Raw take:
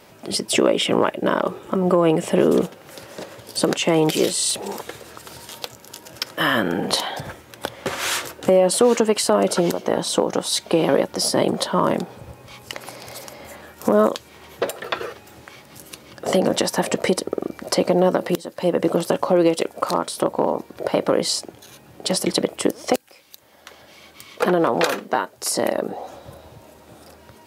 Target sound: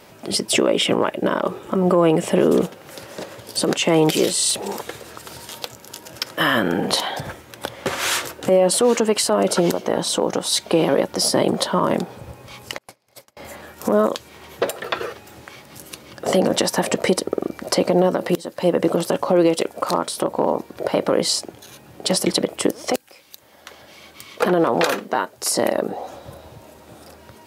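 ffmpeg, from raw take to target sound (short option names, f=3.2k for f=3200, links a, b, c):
-filter_complex "[0:a]asettb=1/sr,asplit=3[a][b][c];[a]atrim=end=12.784[d];[b]atrim=start=12.78:end=13.37,asetpts=PTS-STARTPTS,afade=t=in:d=0.004:c=qsin,afade=t=out:st=0.586:d=0.004:c=qsin,agate=range=-34dB:threshold=-33dB:ratio=16:detection=peak[e];[c]atrim=start=13.366[f];[d][e]acrossfade=d=0.004:c1=hsin:c2=qsin[g];[g][f]acrossfade=d=0.004:c1=qsin:c2=hsin,alimiter=level_in=7.5dB:limit=-1dB:release=50:level=0:latency=1,volume=-5.5dB"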